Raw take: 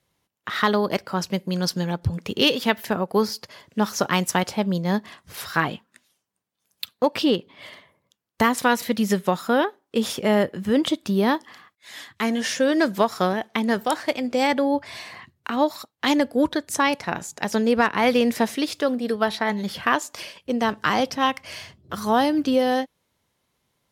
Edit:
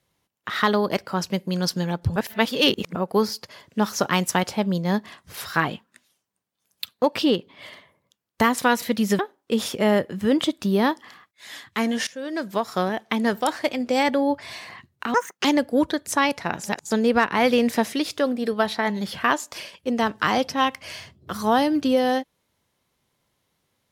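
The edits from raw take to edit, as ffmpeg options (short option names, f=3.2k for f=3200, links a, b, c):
-filter_complex "[0:a]asplit=9[a][b][c][d][e][f][g][h][i];[a]atrim=end=2.162[j];[b]atrim=start=2.158:end=2.952,asetpts=PTS-STARTPTS,areverse[k];[c]atrim=start=2.948:end=9.192[l];[d]atrim=start=9.628:end=12.51,asetpts=PTS-STARTPTS,afade=t=out:st=2.878:d=0.004:c=hsin:silence=0.1[m];[e]atrim=start=12.51:end=15.584,asetpts=PTS-STARTPTS,afade=t=in:d=0.94:silence=0.1[n];[f]atrim=start=15.58:end=16.07,asetpts=PTS-STARTPTS,asetrate=70560,aresample=44100[o];[g]atrim=start=16.066:end=17.262[p];[h]atrim=start=17.258:end=17.532,asetpts=PTS-STARTPTS,areverse[q];[i]atrim=start=17.528[r];[j][k]acrossfade=d=0.004:c1=hsin:c2=hsin[s];[s][l]acrossfade=d=0.004:c1=hsin:c2=hsin[t];[m][n]concat=n=2:v=0:a=1[u];[t][u]acrossfade=d=0.004:c1=hsin:c2=hsin[v];[v][o]acrossfade=d=0.004:c1=hsin:c2=hsin[w];[w][p]acrossfade=d=0.004:c1=hsin:c2=hsin[x];[x][q]acrossfade=d=0.004:c1=hsin:c2=hsin[y];[y][r]acrossfade=d=0.004:c1=hsin:c2=hsin"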